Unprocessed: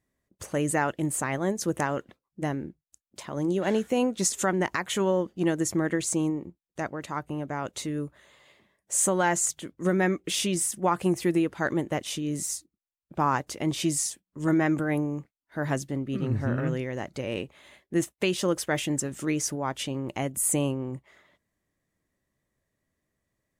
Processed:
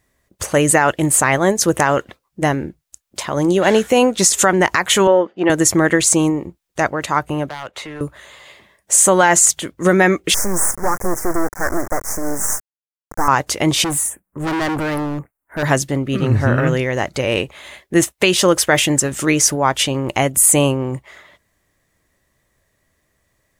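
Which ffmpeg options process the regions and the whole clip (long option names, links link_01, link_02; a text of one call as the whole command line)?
ffmpeg -i in.wav -filter_complex "[0:a]asettb=1/sr,asplit=3[link_01][link_02][link_03];[link_01]atrim=end=5.074[link_04];[link_02]atrim=start=5.07:end=5.5,asetpts=PTS-STARTPTS,afade=type=in:duration=0.004:curve=qsin,afade=type=out:start_time=0.426:duration=0.004:curve=qsin,highpass=310,lowpass=2300,bandreject=frequency=1100:width=14[link_05];[link_03]atrim=start=5.496[link_06];[link_04][link_05]acrossfade=duration=0.004:curve1=hsin:curve2=qsin[link_07];[link_07][link_06]acrossfade=duration=0.004:curve1=qsin:curve2=hsin,asettb=1/sr,asplit=3[link_08][link_09][link_10];[link_08]atrim=end=7.494[link_11];[link_09]atrim=start=7.49:end=8.01,asetpts=PTS-STARTPTS,afade=type=in:duration=0.004:curve=qsin,afade=type=out:start_time=0.516:duration=0.004:curve=qsin,acrossover=split=480 2900:gain=0.224 1 0.1[link_12][link_13][link_14];[link_12][link_13][link_14]amix=inputs=3:normalize=0,acrossover=split=210|3000[link_15][link_16][link_17];[link_16]acompressor=threshold=-43dB:ratio=2.5:attack=3.2:release=140:knee=2.83:detection=peak[link_18];[link_15][link_18][link_17]amix=inputs=3:normalize=0,aeval=exprs='0.0158*(abs(mod(val(0)/0.0158+3,4)-2)-1)':channel_layout=same[link_19];[link_10]atrim=start=8.006[link_20];[link_11][link_19]acrossfade=duration=0.004:curve1=hsin:curve2=qsin[link_21];[link_21][link_20]acrossfade=duration=0.004:curve1=qsin:curve2=hsin,asettb=1/sr,asplit=3[link_22][link_23][link_24];[link_22]atrim=end=10.344[link_25];[link_23]atrim=start=10.34:end=13.28,asetpts=PTS-STARTPTS,afade=type=in:duration=0.004:curve=qsin,afade=type=out:start_time=2.936:duration=0.004:curve=qsin,volume=22.5dB,asoftclip=hard,volume=-22.5dB,acrusher=bits=4:dc=4:mix=0:aa=0.000001,asuperstop=centerf=3300:order=8:qfactor=0.86[link_26];[link_24]atrim=start=13.276[link_27];[link_25][link_26]acrossfade=duration=0.004:curve1=hsin:curve2=qsin[link_28];[link_28][link_27]acrossfade=duration=0.004:curve1=qsin:curve2=hsin,asettb=1/sr,asplit=3[link_29][link_30][link_31];[link_29]atrim=end=13.844[link_32];[link_30]atrim=start=13.84:end=15.63,asetpts=PTS-STARTPTS,afade=type=in:duration=0.004:curve=qsin,afade=type=out:start_time=1.786:duration=0.004:curve=qsin,asuperstop=centerf=4300:order=4:qfactor=0.53,asoftclip=type=hard:threshold=-30.5dB[link_33];[link_31]atrim=start=15.626[link_34];[link_32][link_33]acrossfade=duration=0.004:curve1=hsin:curve2=qsin[link_35];[link_35][link_34]acrossfade=duration=0.004:curve1=qsin:curve2=hsin,equalizer=frequency=220:width=0.68:gain=-7.5,alimiter=level_in=17.5dB:limit=-1dB:release=50:level=0:latency=1,volume=-1dB" out.wav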